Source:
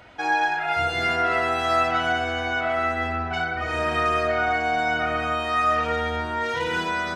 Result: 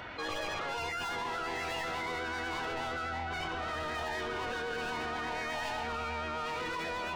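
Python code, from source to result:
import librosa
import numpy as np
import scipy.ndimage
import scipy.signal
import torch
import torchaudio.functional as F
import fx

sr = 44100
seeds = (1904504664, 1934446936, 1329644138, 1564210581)

y = fx.peak_eq(x, sr, hz=5100.0, db=13.5, octaves=2.7)
y = y + 10.0 ** (-9.0 / 20.0) * np.pad(y, (int(828 * sr / 1000.0), 0))[:len(y)]
y = 10.0 ** (-26.5 / 20.0) * np.tanh(y / 10.0 ** (-26.5 / 20.0))
y = fx.high_shelf(y, sr, hz=7700.0, db=-8.5)
y = fx.formant_shift(y, sr, semitones=-6)
y = fx.vibrato(y, sr, rate_hz=8.2, depth_cents=28.0)
y = fx.env_flatten(y, sr, amount_pct=50)
y = y * 10.0 ** (-8.0 / 20.0)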